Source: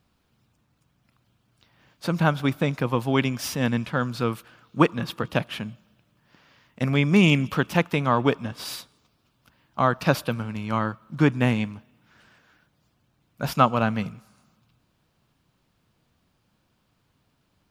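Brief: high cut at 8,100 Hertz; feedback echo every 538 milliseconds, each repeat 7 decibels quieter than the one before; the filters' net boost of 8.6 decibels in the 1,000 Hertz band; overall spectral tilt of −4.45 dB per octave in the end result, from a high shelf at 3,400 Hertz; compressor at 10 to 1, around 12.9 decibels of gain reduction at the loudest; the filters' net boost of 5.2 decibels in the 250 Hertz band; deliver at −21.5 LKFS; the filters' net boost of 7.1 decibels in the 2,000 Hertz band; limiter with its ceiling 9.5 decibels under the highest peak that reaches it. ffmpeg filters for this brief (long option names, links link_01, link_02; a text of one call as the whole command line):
ffmpeg -i in.wav -af "lowpass=8100,equalizer=frequency=250:width_type=o:gain=6,equalizer=frequency=1000:width_type=o:gain=8.5,equalizer=frequency=2000:width_type=o:gain=4.5,highshelf=frequency=3400:gain=6,acompressor=threshold=-18dB:ratio=10,alimiter=limit=-13.5dB:level=0:latency=1,aecho=1:1:538|1076|1614|2152|2690:0.447|0.201|0.0905|0.0407|0.0183,volume=6dB" out.wav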